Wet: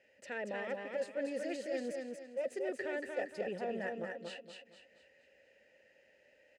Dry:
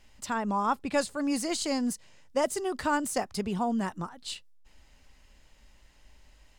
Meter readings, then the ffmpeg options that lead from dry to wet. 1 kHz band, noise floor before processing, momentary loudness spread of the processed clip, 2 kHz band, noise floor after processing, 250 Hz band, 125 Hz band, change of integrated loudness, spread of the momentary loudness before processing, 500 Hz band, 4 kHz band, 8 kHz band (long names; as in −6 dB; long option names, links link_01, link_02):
−16.5 dB, −60 dBFS, 7 LU, −5.5 dB, −68 dBFS, −13.5 dB, −15.5 dB, −9.0 dB, 10 LU, −4.5 dB, −14.5 dB, −21.0 dB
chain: -filter_complex "[0:a]highpass=frequency=70:width=0.5412,highpass=frequency=70:width=1.3066,equalizer=frequency=3500:width_type=o:width=0.67:gain=-8,aeval=exprs='clip(val(0),-1,0.0282)':channel_layout=same,asplit=3[link_01][link_02][link_03];[link_01]bandpass=frequency=530:width_type=q:width=8,volume=0dB[link_04];[link_02]bandpass=frequency=1840:width_type=q:width=8,volume=-6dB[link_05];[link_03]bandpass=frequency=2480:width_type=q:width=8,volume=-9dB[link_06];[link_04][link_05][link_06]amix=inputs=3:normalize=0,areverse,acompressor=threshold=-45dB:ratio=10,areverse,aecho=1:1:233|466|699|932|1165:0.631|0.233|0.0864|0.032|0.0118,volume=10dB"